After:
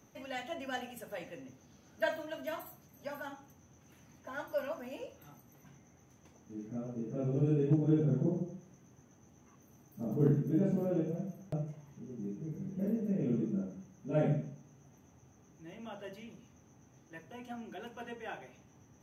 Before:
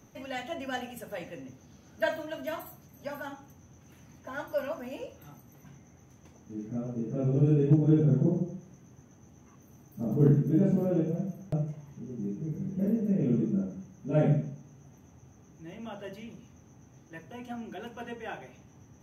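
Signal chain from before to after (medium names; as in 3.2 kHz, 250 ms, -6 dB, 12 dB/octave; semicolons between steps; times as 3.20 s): bass shelf 190 Hz -5.5 dB; trim -3.5 dB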